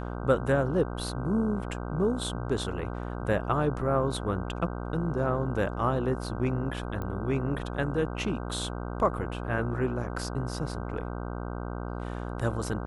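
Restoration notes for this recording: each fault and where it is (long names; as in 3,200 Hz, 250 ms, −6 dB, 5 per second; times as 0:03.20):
mains buzz 60 Hz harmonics 26 −35 dBFS
0:07.02: click −23 dBFS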